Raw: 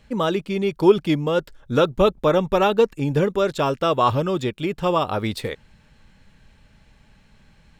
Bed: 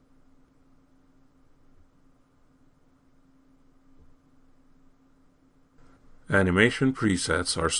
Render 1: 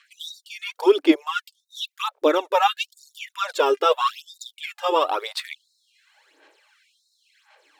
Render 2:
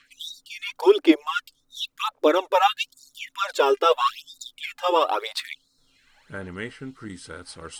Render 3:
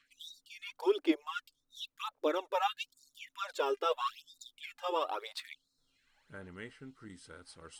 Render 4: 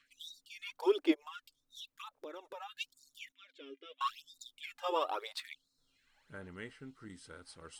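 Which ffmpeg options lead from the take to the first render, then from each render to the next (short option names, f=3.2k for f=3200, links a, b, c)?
-af "aphaser=in_gain=1:out_gain=1:delay=2.5:decay=0.65:speed=0.93:type=sinusoidal,afftfilt=real='re*gte(b*sr/1024,260*pow(3700/260,0.5+0.5*sin(2*PI*0.74*pts/sr)))':imag='im*gte(b*sr/1024,260*pow(3700/260,0.5+0.5*sin(2*PI*0.74*pts/sr)))':win_size=1024:overlap=0.75"
-filter_complex "[1:a]volume=-13.5dB[a];[0:a][a]amix=inputs=2:normalize=0"
-af "volume=-13dB"
-filter_complex "[0:a]asplit=3[a][b][c];[a]afade=t=out:st=1.13:d=0.02[d];[b]acompressor=threshold=-44dB:ratio=6:attack=3.2:release=140:knee=1:detection=peak,afade=t=in:st=1.13:d=0.02,afade=t=out:st=2.79:d=0.02[e];[c]afade=t=in:st=2.79:d=0.02[f];[d][e][f]amix=inputs=3:normalize=0,asettb=1/sr,asplit=3[g][h][i];[g]atrim=end=3.324[j];[h]atrim=start=3.32:end=4.01,asetpts=PTS-STARTPTS,afade=t=in:d=0.004:c=qsin,afade=t=out:st=0.686:d=0.004:c=qsin,asplit=3[k][l][m];[k]bandpass=f=270:t=q:w=8,volume=0dB[n];[l]bandpass=f=2.29k:t=q:w=8,volume=-6dB[o];[m]bandpass=f=3.01k:t=q:w=8,volume=-9dB[p];[n][o][p]amix=inputs=3:normalize=0[q];[i]atrim=start=4.006[r];[j][q]acrossfade=d=0.004:c1=hsin:c2=qsin[s];[s][r]acrossfade=d=0.004:c1=qsin:c2=hsin"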